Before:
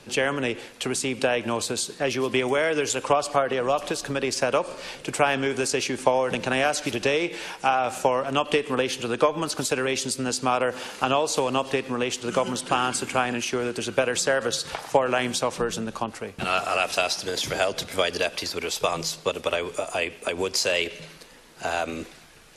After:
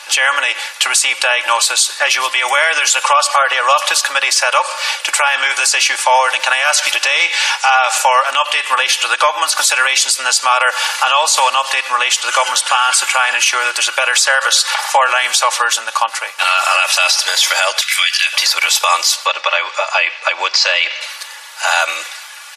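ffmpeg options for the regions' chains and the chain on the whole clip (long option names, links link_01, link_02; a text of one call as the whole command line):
ffmpeg -i in.wav -filter_complex "[0:a]asettb=1/sr,asplit=3[link_01][link_02][link_03];[link_01]atrim=end=7.204[link_04];[link_02]atrim=start=7.2:end=7.98,asetpts=PTS-STARTPTS,afade=type=in:duration=0.004:curve=qsin,afade=type=out:start_time=0.776:duration=0.004:curve=qsin,aemphasis=mode=production:type=cd,asoftclip=type=hard:threshold=-13dB,highpass=270,lowpass=6200[link_05];[link_03]atrim=start=7.976[link_06];[link_04][link_05]acrossfade=duration=0.004:curve1=hsin:curve2=qsin[link_07];[link_07][link_06]acrossfade=duration=0.004:curve1=qsin:curve2=hsin,asettb=1/sr,asplit=3[link_08][link_09][link_10];[link_08]atrim=end=17.814[link_11];[link_09]atrim=start=17.81:end=18.33,asetpts=PTS-STARTPTS,afade=type=in:duration=0.004:curve=qsin,afade=type=out:start_time=0.516:duration=0.004:curve=qsin,highpass=frequency=2100:width_type=q:width=1.6,asplit=2[link_12][link_13];[link_13]adelay=15,volume=-11.5dB[link_14];[link_12][link_14]amix=inputs=2:normalize=0,atrim=end_sample=22932[link_15];[link_10]atrim=start=18.326[link_16];[link_11][link_15]acrossfade=duration=0.004:curve1=hsin:curve2=qsin[link_17];[link_17][link_16]acrossfade=duration=0.004:curve1=qsin:curve2=hsin,asettb=1/sr,asplit=3[link_18][link_19][link_20];[link_18]atrim=end=19.264[link_21];[link_19]atrim=start=19.26:end=21.01,asetpts=PTS-STARTPTS,afade=type=in:duration=0.004:curve=qsin,afade=type=out:start_time=1.746:duration=0.004:curve=qsin,lowpass=frequency=5100:width=0.5412,lowpass=frequency=5100:width=1.3066,equalizer=frequency=3200:width=4:gain=-3.5[link_22];[link_20]atrim=start=21.006[link_23];[link_21][link_22]acrossfade=duration=0.004:curve1=hsin:curve2=qsin[link_24];[link_24][link_23]acrossfade=duration=0.004:curve1=qsin:curve2=hsin,highpass=frequency=880:width=0.5412,highpass=frequency=880:width=1.3066,aecho=1:1:3.5:0.62,alimiter=level_in=19.5dB:limit=-1dB:release=50:level=0:latency=1,volume=-1dB" out.wav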